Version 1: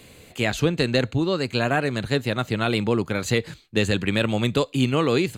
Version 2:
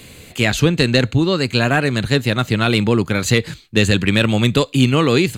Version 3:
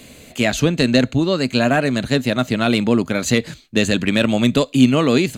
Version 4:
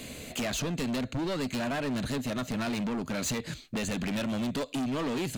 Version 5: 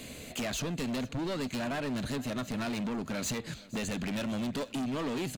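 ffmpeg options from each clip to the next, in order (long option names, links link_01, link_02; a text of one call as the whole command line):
ffmpeg -i in.wav -af "equalizer=frequency=640:width=0.64:gain=-5,acontrast=37,volume=3.5dB" out.wav
ffmpeg -i in.wav -af "equalizer=frequency=100:width_type=o:width=0.33:gain=-9,equalizer=frequency=250:width_type=o:width=0.33:gain=8,equalizer=frequency=630:width_type=o:width=0.33:gain=9,equalizer=frequency=6300:width_type=o:width=0.33:gain=4,volume=-3dB" out.wav
ffmpeg -i in.wav -af "acompressor=threshold=-22dB:ratio=6,asoftclip=type=hard:threshold=-28.5dB" out.wav
ffmpeg -i in.wav -af "aecho=1:1:467|934|1401:0.1|0.035|0.0123,volume=-2.5dB" out.wav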